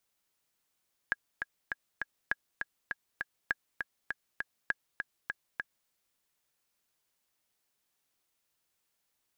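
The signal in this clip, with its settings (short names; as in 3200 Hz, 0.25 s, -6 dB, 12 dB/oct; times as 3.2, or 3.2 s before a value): metronome 201 bpm, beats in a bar 4, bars 4, 1650 Hz, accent 5.5 dB -15 dBFS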